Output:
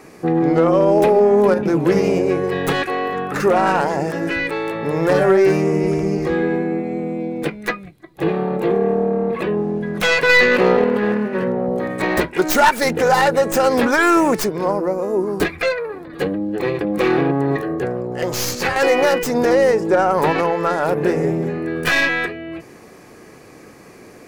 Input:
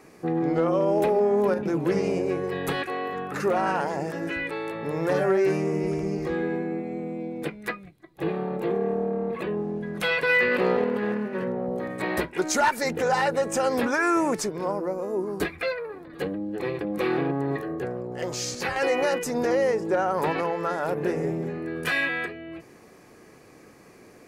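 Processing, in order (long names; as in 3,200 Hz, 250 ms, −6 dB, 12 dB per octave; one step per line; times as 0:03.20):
stylus tracing distortion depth 0.13 ms
level +8.5 dB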